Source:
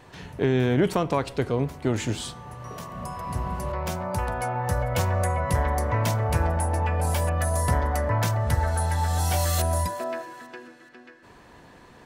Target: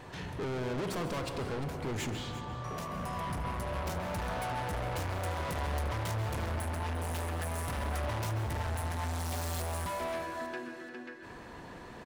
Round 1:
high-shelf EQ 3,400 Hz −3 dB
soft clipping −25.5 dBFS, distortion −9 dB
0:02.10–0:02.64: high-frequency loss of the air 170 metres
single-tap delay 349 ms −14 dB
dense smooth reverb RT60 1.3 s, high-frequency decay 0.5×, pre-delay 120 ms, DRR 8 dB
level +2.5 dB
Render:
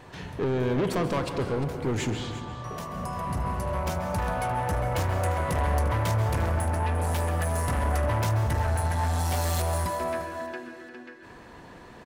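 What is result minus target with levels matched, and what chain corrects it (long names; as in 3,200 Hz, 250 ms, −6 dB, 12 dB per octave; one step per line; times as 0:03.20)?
soft clipping: distortion −5 dB
high-shelf EQ 3,400 Hz −3 dB
soft clipping −36.5 dBFS, distortion −4 dB
0:02.10–0:02.64: high-frequency loss of the air 170 metres
single-tap delay 349 ms −14 dB
dense smooth reverb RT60 1.3 s, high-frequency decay 0.5×, pre-delay 120 ms, DRR 8 dB
level +2.5 dB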